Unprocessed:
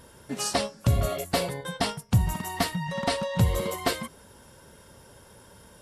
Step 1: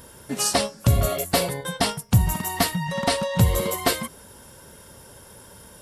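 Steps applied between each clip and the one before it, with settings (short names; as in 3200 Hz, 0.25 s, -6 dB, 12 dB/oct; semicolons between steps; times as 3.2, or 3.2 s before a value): high shelf 9600 Hz +10 dB; gain +4 dB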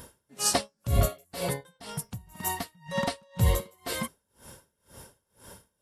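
dB-linear tremolo 2 Hz, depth 33 dB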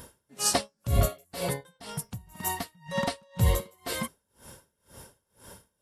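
nothing audible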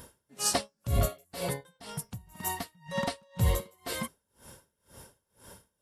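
hard clip -15 dBFS, distortion -22 dB; gain -2.5 dB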